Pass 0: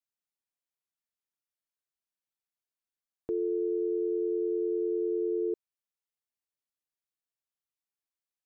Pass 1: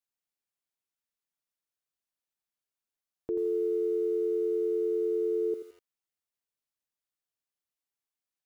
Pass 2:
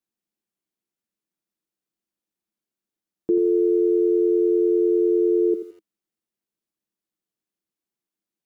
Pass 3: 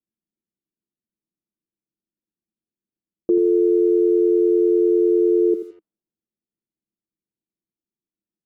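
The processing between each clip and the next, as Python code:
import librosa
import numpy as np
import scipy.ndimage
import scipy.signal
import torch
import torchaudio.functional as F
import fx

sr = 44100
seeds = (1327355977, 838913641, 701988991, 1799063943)

y1 = fx.echo_crushed(x, sr, ms=84, feedback_pct=35, bits=9, wet_db=-10.5)
y2 = fx.small_body(y1, sr, hz=(210.0, 320.0), ring_ms=50, db=16)
y3 = fx.env_lowpass(y2, sr, base_hz=350.0, full_db=-21.0)
y3 = y3 * 10.0 ** (2.5 / 20.0)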